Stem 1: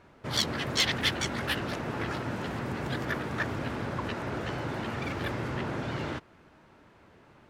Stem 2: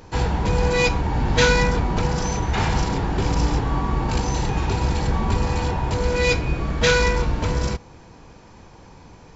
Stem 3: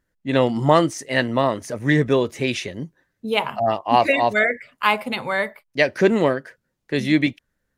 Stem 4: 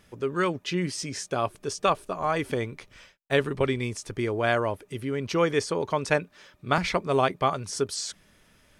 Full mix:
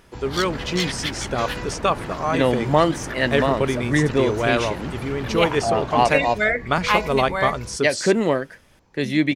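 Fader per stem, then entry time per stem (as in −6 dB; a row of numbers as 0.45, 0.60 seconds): −0.5, −15.5, −1.5, +3.0 decibels; 0.00, 0.00, 2.05, 0.00 seconds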